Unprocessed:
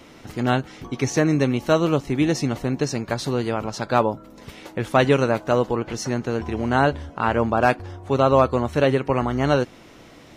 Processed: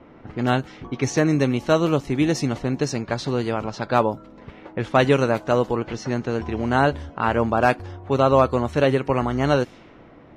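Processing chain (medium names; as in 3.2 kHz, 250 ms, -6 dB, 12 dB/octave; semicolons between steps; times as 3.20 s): level-controlled noise filter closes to 1.3 kHz, open at -17.5 dBFS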